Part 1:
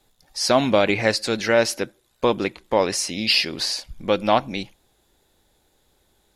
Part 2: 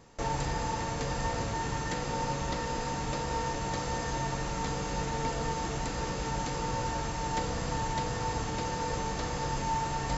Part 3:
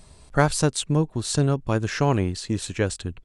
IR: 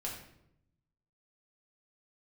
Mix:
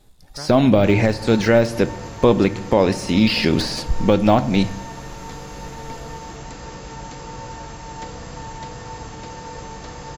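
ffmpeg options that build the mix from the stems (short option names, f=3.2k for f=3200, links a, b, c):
-filter_complex "[0:a]deesser=0.75,lowshelf=f=300:g=11.5,dynaudnorm=f=100:g=7:m=10dB,volume=0.5dB,asplit=3[a][b][c];[b]volume=-11.5dB[d];[1:a]adelay=650,volume=-1.5dB[e];[2:a]volume=-15.5dB[f];[c]apad=whole_len=143109[g];[f][g]sidechaincompress=threshold=-32dB:ratio=8:attack=16:release=1110[h];[3:a]atrim=start_sample=2205[i];[d][i]afir=irnorm=-1:irlink=0[j];[a][e][h][j]amix=inputs=4:normalize=0,alimiter=limit=-4dB:level=0:latency=1:release=243"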